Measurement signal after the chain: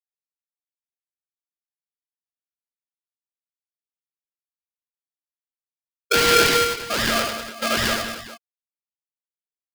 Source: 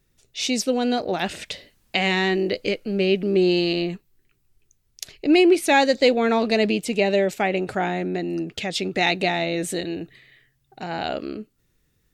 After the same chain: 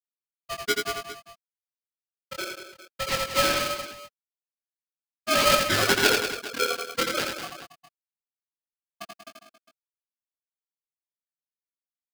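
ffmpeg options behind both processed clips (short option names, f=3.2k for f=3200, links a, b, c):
-filter_complex "[0:a]afftfilt=real='re*gte(hypot(re,im),1)':imag='im*gte(hypot(re,im),1)':win_size=1024:overlap=0.75,equalizer=f=470:t=o:w=0.33:g=11,acrossover=split=280|1100[a][b][c];[a]acompressor=threshold=-29dB:ratio=4[d];[b]acompressor=threshold=-14dB:ratio=4[e];[c]acompressor=threshold=-36dB:ratio=4[f];[d][e][f]amix=inputs=3:normalize=0,acrusher=samples=36:mix=1:aa=0.000001:lfo=1:lforange=21.6:lforate=3.8,asuperstop=centerf=2300:order=8:qfactor=5.8,flanger=delay=18:depth=6.9:speed=0.22,acrusher=bits=6:mode=log:mix=0:aa=0.000001,lowpass=f=3.9k:t=q:w=3.5,aecho=1:1:84|187|274|406:0.631|0.335|0.188|0.158,aeval=exprs='val(0)*sgn(sin(2*PI*930*n/s))':c=same,volume=-3.5dB"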